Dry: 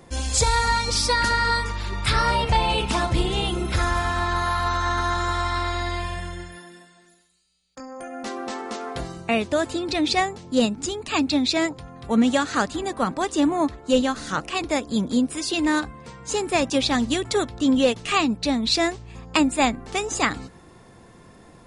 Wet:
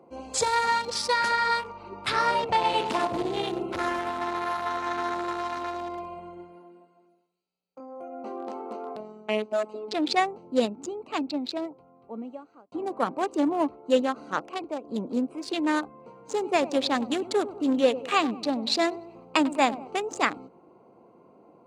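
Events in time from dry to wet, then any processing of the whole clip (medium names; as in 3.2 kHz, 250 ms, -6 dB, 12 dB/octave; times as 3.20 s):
0.89–1.83 s: peaking EQ 300 Hz -12.5 dB 0.41 oct
2.53–5.64 s: feedback delay 100 ms, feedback 53%, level -7.5 dB
8.96–9.94 s: robot voice 214 Hz
10.62–12.72 s: fade out
14.36–14.84 s: fade out, to -8 dB
16.02–19.88 s: bit-crushed delay 98 ms, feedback 55%, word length 7-bit, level -13 dB
whole clip: local Wiener filter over 25 samples; high-pass 330 Hz 12 dB/octave; treble shelf 3.5 kHz -6.5 dB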